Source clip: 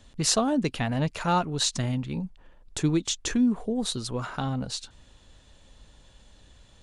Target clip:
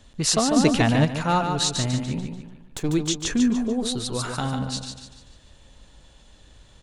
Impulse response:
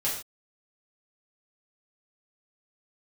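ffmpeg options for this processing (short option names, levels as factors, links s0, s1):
-filter_complex "[0:a]asettb=1/sr,asplit=3[s0][s1][s2];[s0]atrim=end=2.194[s3];[s1]atrim=start=2.19:end=2.89,asetpts=PTS-STARTPTS,afade=t=in:d=0.004:c=qsin,afade=t=out:st=0.696:d=0.004:c=qsin,aeval=exprs='if(lt(val(0),0),0.251*val(0),val(0))':c=same[s4];[s2]atrim=start=2.886[s5];[s3][s4]acrossfade=d=0.004:c1=hsin:c2=qsin[s6];[s6][s5]acrossfade=d=0.004:c1=qsin:c2=hsin,aecho=1:1:146|292|438|584|730:0.501|0.205|0.0842|0.0345|0.0142,asettb=1/sr,asplit=3[s7][s8][s9];[s7]atrim=end=0.564[s10];[s8]atrim=start=0.56:end=1.05,asetpts=PTS-STARTPTS,afade=t=in:d=0.004:c=qsin,afade=t=out:st=0.486:d=0.004:c=qsin,acontrast=40[s11];[s9]atrim=start=1.046[s12];[s10][s11]acrossfade=d=0.004:c1=hsin:c2=qsin[s13];[s13][s12]acrossfade=d=0.004:c1=qsin:c2=hsin,asettb=1/sr,asplit=3[s14][s15][s16];[s14]atrim=end=4.134[s17];[s15]atrim=start=4.13:end=4.59,asetpts=PTS-STARTPTS,afade=t=in:d=0.004:c=qsin,afade=t=out:st=0.456:d=0.004:c=qsin,aemphasis=mode=production:type=50kf[s18];[s16]atrim=start=4.586[s19];[s17][s18]acrossfade=d=0.004:c1=hsin:c2=qsin[s20];[s20][s19]acrossfade=d=0.004:c1=qsin:c2=hsin,volume=1.26"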